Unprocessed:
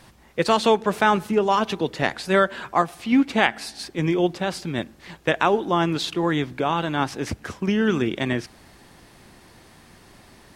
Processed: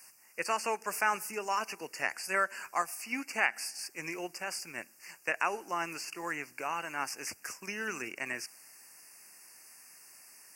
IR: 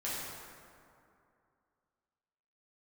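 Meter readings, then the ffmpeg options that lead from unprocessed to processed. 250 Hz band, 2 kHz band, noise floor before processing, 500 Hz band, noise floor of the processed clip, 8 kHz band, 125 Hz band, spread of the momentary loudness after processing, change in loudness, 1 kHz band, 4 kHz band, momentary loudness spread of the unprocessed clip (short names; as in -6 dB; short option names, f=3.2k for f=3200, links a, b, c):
-22.5 dB, -6.5 dB, -51 dBFS, -17.0 dB, -61 dBFS, 0.0 dB, -27.0 dB, 21 LU, -12.0 dB, -11.0 dB, -13.0 dB, 10 LU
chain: -filter_complex "[0:a]acrossover=split=2900[a][b];[b]acompressor=threshold=-39dB:ratio=4:attack=1:release=60[c];[a][c]amix=inputs=2:normalize=0,aderivative,asplit=2[d][e];[e]aeval=exprs='sgn(val(0))*max(abs(val(0))-0.00237,0)':c=same,volume=-10.5dB[f];[d][f]amix=inputs=2:normalize=0,asuperstop=centerf=3600:order=12:qfactor=2,volume=4dB"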